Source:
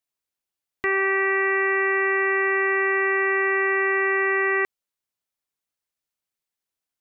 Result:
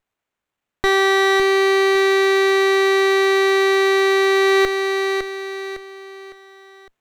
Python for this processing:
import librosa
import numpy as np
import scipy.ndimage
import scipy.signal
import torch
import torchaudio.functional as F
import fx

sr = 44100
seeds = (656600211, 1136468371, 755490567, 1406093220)

y = fx.echo_feedback(x, sr, ms=557, feedback_pct=38, wet_db=-8.0)
y = fx.rider(y, sr, range_db=3, speed_s=0.5)
y = fx.running_max(y, sr, window=9)
y = y * 10.0 ** (8.5 / 20.0)